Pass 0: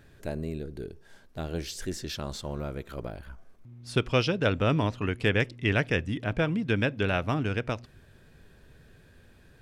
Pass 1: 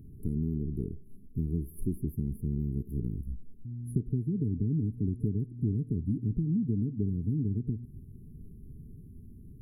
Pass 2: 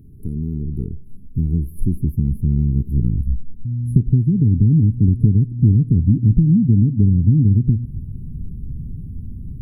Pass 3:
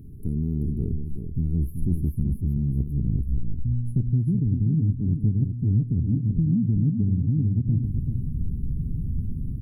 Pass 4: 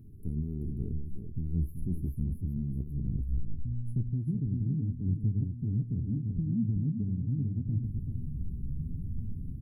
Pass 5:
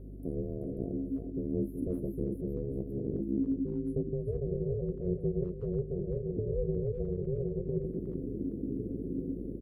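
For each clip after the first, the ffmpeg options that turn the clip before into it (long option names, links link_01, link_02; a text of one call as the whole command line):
ffmpeg -i in.wav -af "lowshelf=frequency=310:width_type=q:width=1.5:gain=8,acompressor=threshold=-26dB:ratio=6,afftfilt=real='re*(1-between(b*sr/4096,450,9700))':imag='im*(1-between(b*sr/4096,450,9700))':win_size=4096:overlap=0.75" out.wav
ffmpeg -i in.wav -af "asubboost=boost=6:cutoff=240,volume=4dB" out.wav
ffmpeg -i in.wav -af "areverse,acompressor=threshold=-22dB:ratio=6,areverse,aecho=1:1:383:0.447,volume=1.5dB" out.wav
ffmpeg -i in.wav -af "flanger=delay=8.4:depth=8.4:regen=61:speed=0.76:shape=triangular,volume=-4dB" out.wav
ffmpeg -i in.wav -filter_complex "[0:a]aeval=exprs='val(0)*sin(2*PI*270*n/s)':channel_layout=same,aeval=exprs='val(0)+0.00631*(sin(2*PI*50*n/s)+sin(2*PI*2*50*n/s)/2+sin(2*PI*3*50*n/s)/3+sin(2*PI*4*50*n/s)/4+sin(2*PI*5*50*n/s)/5)':channel_layout=same,asplit=2[link_01][link_02];[link_02]adelay=360,highpass=300,lowpass=3400,asoftclip=type=hard:threshold=-29dB,volume=-14dB[link_03];[link_01][link_03]amix=inputs=2:normalize=0" out.wav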